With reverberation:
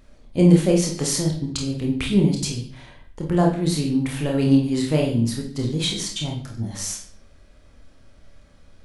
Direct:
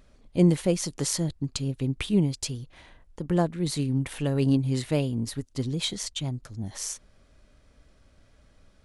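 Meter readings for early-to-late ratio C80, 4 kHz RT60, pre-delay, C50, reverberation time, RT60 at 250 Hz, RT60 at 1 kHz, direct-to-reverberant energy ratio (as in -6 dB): 10.5 dB, 0.50 s, 26 ms, 6.0 dB, 0.55 s, 0.70 s, 0.50 s, 0.0 dB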